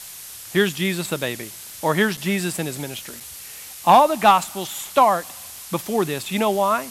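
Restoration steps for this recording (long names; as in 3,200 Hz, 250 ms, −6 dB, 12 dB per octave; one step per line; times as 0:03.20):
click removal
repair the gap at 0:02.17/0:03.20, 5.8 ms
noise reduction from a noise print 26 dB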